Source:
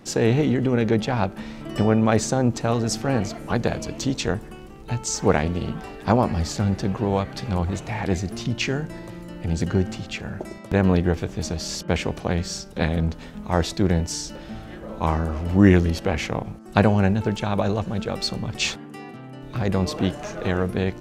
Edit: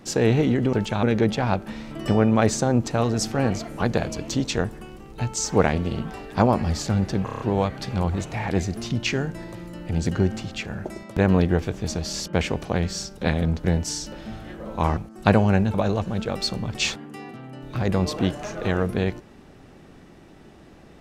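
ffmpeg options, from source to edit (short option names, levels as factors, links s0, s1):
-filter_complex "[0:a]asplit=11[s0][s1][s2][s3][s4][s5][s6][s7][s8][s9][s10];[s0]atrim=end=0.732[s11];[s1]atrim=start=17.238:end=17.542[s12];[s2]atrim=start=0.728:end=6.982[s13];[s3]atrim=start=6.948:end=6.982[s14];[s4]atrim=start=6.948:end=6.982[s15];[s5]atrim=start=6.948:end=6.982[s16];[s6]atrim=start=6.948:end=6.982[s17];[s7]atrim=start=6.948:end=13.192[s18];[s8]atrim=start=13.868:end=15.202[s19];[s9]atrim=start=16.468:end=17.242[s20];[s10]atrim=start=17.538[s21];[s11][s12]acrossfade=d=0.004:c1=hsin:c2=hsin[s22];[s22][s13]acrossfade=d=0.004:c1=hsin:c2=hsin[s23];[s23][s14]acrossfade=d=0.004:c1=hsin:c2=hsin[s24];[s24][s15]acrossfade=d=0.004:c1=hsin:c2=hsin[s25];[s25][s16]acrossfade=d=0.004:c1=hsin:c2=hsin[s26];[s26][s17]acrossfade=d=0.004:c1=hsin:c2=hsin[s27];[s27][s18]acrossfade=d=0.004:c1=hsin:c2=hsin[s28];[s28][s19]acrossfade=d=0.004:c1=hsin:c2=hsin[s29];[s29][s20]acrossfade=d=0.004:c1=hsin:c2=hsin[s30];[s30][s21]acrossfade=d=0.004:c1=hsin:c2=hsin"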